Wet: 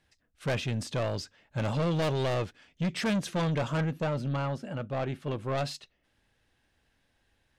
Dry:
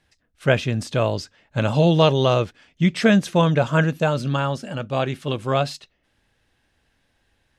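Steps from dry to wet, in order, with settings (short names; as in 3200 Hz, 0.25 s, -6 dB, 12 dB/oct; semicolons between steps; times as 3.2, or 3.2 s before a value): 3.77–5.58 bell 7900 Hz -9.5 dB 2.9 oct; soft clip -20 dBFS, distortion -8 dB; gain -5 dB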